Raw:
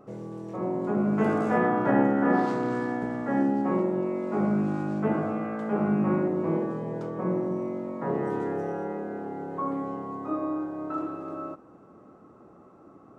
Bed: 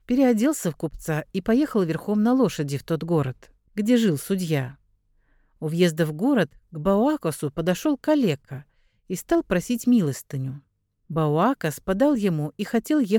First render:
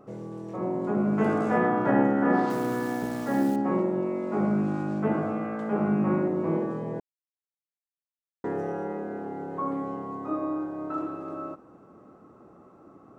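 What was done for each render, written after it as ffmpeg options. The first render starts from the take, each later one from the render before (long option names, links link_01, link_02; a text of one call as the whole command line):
ffmpeg -i in.wav -filter_complex "[0:a]asettb=1/sr,asplit=3[link_01][link_02][link_03];[link_01]atrim=end=2.504[link_04];[link_02]atrim=start=2.5:end=3.56,asetpts=PTS-STARTPTS,afade=type=in:duration=0.004:curve=qsin,afade=type=out:start_time=1.056:duration=0.004:curve=qsin,acrusher=bits=8:dc=4:mix=0:aa=0.000001[link_05];[link_03]atrim=start=3.556[link_06];[link_04][link_05]acrossfade=duration=0.004:curve1=hsin:curve2=qsin[link_07];[link_07][link_06]acrossfade=duration=0.004:curve1=qsin:curve2=hsin,asplit=3[link_08][link_09][link_10];[link_08]atrim=end=7,asetpts=PTS-STARTPTS,afade=type=out:start_time=6.996:duration=0.004:curve=hsin[link_11];[link_09]atrim=start=7:end=8.44,asetpts=PTS-STARTPTS,volume=0[link_12];[link_10]atrim=start=8.44,asetpts=PTS-STARTPTS,afade=type=in:duration=0.004:curve=hsin[link_13];[link_11][link_12][link_13]concat=n=3:v=0:a=1" out.wav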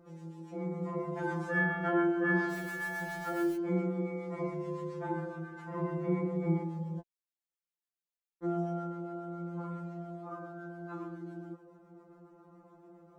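ffmpeg -i in.wav -filter_complex "[0:a]acrossover=split=730[link_01][link_02];[link_01]aeval=exprs='val(0)*(1-0.5/2+0.5/2*cos(2*PI*7.2*n/s))':channel_layout=same[link_03];[link_02]aeval=exprs='val(0)*(1-0.5/2-0.5/2*cos(2*PI*7.2*n/s))':channel_layout=same[link_04];[link_03][link_04]amix=inputs=2:normalize=0,afftfilt=real='re*2.83*eq(mod(b,8),0)':imag='im*2.83*eq(mod(b,8),0)':win_size=2048:overlap=0.75" out.wav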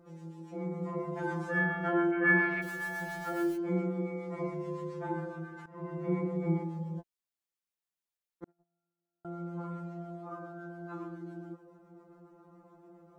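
ffmpeg -i in.wav -filter_complex "[0:a]asplit=3[link_01][link_02][link_03];[link_01]afade=type=out:start_time=2.11:duration=0.02[link_04];[link_02]lowpass=frequency=2300:width_type=q:width=6.6,afade=type=in:start_time=2.11:duration=0.02,afade=type=out:start_time=2.61:duration=0.02[link_05];[link_03]afade=type=in:start_time=2.61:duration=0.02[link_06];[link_04][link_05][link_06]amix=inputs=3:normalize=0,asettb=1/sr,asplit=3[link_07][link_08][link_09];[link_07]atrim=end=8.444[link_10];[link_08]atrim=start=8.44:end=9.25,asetpts=PTS-STARTPTS,afade=type=in:duration=0.004:curve=qsin,afade=type=out:start_time=0.806:duration=0.004:curve=qsin,agate=range=-51dB:threshold=-27dB:ratio=16:release=100:detection=peak[link_11];[link_09]atrim=start=9.246[link_12];[link_10][link_11]acrossfade=duration=0.004:curve1=hsin:curve2=qsin[link_13];[link_13][link_12]acrossfade=duration=0.004:curve1=qsin:curve2=hsin,asplit=2[link_14][link_15];[link_14]atrim=end=5.66,asetpts=PTS-STARTPTS,afade=type=out:start_time=5.656:duration=0.004:curve=hsin:silence=0.149624[link_16];[link_15]atrim=start=5.66,asetpts=PTS-STARTPTS,afade=type=in:duration=0.47:silence=0.149624[link_17];[link_16][link_17]concat=n=2:v=0:a=1" out.wav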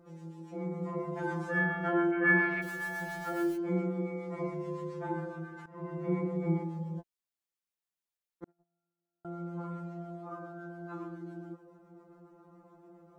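ffmpeg -i in.wav -af anull out.wav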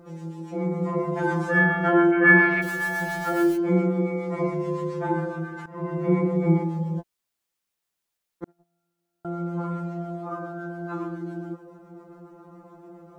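ffmpeg -i in.wav -af "volume=10dB" out.wav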